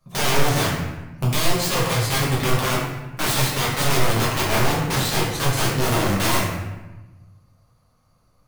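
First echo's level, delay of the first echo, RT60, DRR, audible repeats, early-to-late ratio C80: no echo, no echo, 1.1 s, -6.5 dB, no echo, 4.0 dB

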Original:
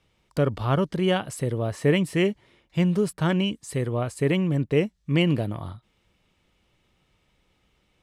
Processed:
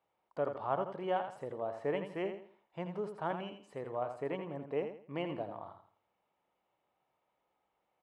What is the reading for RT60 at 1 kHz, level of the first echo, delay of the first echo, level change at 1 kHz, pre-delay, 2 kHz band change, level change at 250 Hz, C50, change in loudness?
no reverb, -8.0 dB, 83 ms, -4.5 dB, no reverb, -15.5 dB, -18.5 dB, no reverb, -14.0 dB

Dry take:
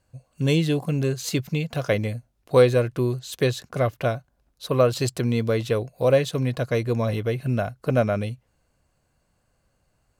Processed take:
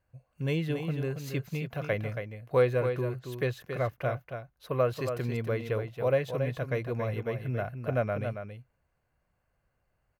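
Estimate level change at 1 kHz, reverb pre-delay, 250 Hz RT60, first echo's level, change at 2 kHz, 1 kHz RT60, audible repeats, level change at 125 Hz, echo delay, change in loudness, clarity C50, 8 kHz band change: -6.0 dB, no reverb, no reverb, -7.5 dB, -5.5 dB, no reverb, 1, -7.5 dB, 277 ms, -8.0 dB, no reverb, under -15 dB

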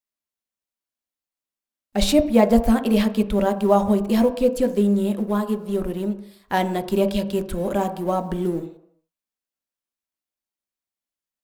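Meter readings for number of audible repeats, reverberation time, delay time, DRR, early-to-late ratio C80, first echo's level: no echo, 0.75 s, no echo, 6.5 dB, 15.0 dB, no echo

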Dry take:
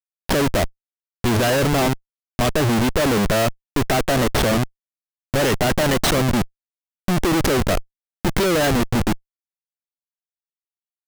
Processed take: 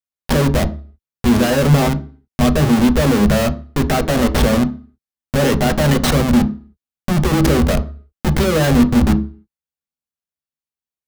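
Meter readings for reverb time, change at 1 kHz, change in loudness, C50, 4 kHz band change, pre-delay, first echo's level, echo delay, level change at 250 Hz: 0.40 s, +1.0 dB, +4.0 dB, 16.0 dB, 0.0 dB, 3 ms, no echo, no echo, +7.0 dB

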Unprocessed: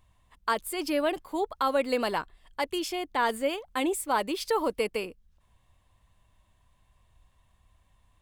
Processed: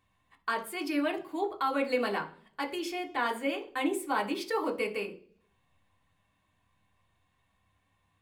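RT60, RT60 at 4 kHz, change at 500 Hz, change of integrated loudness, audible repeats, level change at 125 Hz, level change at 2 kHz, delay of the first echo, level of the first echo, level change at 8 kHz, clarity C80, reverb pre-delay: 0.50 s, 0.55 s, -4.0 dB, -3.0 dB, no echo, no reading, -0.5 dB, no echo, no echo, -8.0 dB, 19.0 dB, 3 ms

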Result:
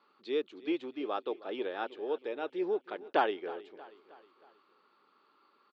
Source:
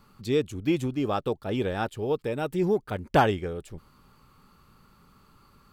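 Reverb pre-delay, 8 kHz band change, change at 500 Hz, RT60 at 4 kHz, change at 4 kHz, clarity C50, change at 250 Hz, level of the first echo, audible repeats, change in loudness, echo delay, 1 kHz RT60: no reverb, no reading, -6.5 dB, no reverb, -6.5 dB, no reverb, -10.0 dB, -18.0 dB, 3, -7.5 dB, 316 ms, no reverb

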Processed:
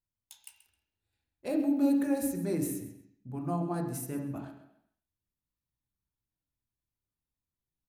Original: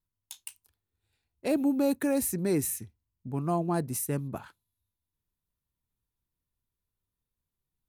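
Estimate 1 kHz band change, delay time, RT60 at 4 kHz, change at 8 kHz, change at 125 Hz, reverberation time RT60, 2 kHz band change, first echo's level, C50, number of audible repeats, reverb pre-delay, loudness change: -4.5 dB, 132 ms, 0.75 s, -8.0 dB, -3.5 dB, 0.75 s, -6.0 dB, -15.0 dB, 6.0 dB, 1, 3 ms, -2.0 dB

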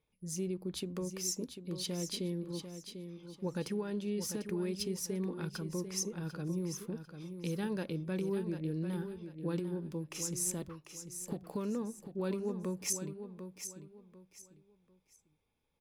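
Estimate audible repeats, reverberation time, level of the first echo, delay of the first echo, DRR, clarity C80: 3, no reverb, -9.0 dB, 745 ms, no reverb, no reverb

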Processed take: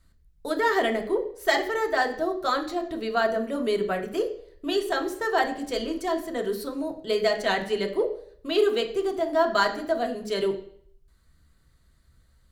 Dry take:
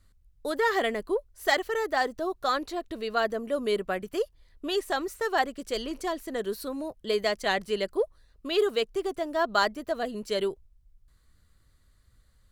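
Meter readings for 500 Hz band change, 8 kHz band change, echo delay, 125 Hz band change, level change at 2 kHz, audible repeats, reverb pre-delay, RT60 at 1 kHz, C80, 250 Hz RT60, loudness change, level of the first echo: +3.0 dB, +0.5 dB, no echo, no reading, +2.0 dB, no echo, 3 ms, 0.60 s, 14.5 dB, 0.55 s, +3.0 dB, no echo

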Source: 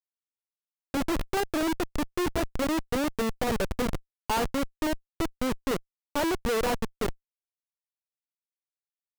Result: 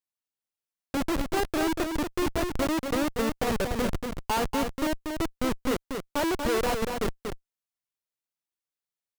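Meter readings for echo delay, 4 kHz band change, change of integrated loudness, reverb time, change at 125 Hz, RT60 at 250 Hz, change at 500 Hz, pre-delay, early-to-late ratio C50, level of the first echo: 237 ms, +1.0 dB, +1.0 dB, no reverb, +1.0 dB, no reverb, +1.0 dB, no reverb, no reverb, -5.5 dB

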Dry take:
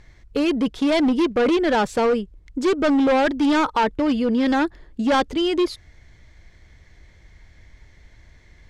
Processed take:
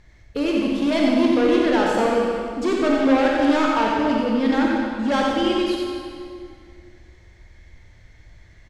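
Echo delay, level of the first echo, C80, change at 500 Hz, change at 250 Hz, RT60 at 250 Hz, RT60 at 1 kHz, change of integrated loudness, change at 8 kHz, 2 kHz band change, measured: 90 ms, -4.5 dB, -0.5 dB, +0.5 dB, +1.0 dB, 2.4 s, 2.2 s, +0.5 dB, no reading, +0.5 dB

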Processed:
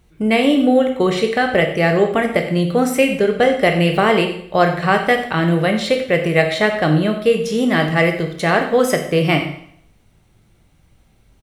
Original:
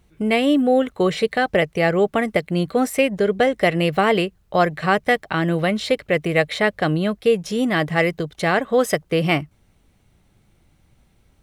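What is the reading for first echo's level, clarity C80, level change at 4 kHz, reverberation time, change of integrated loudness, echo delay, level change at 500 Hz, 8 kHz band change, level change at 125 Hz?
-15.0 dB, 10.0 dB, +3.5 dB, 0.65 s, +3.5 dB, 91 ms, +3.5 dB, +3.5 dB, +5.0 dB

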